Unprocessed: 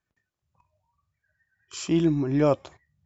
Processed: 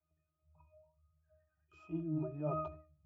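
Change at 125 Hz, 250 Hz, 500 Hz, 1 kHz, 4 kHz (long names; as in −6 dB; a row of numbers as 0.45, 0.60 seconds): −13.0 dB, −16.5 dB, −16.0 dB, −9.5 dB, below −35 dB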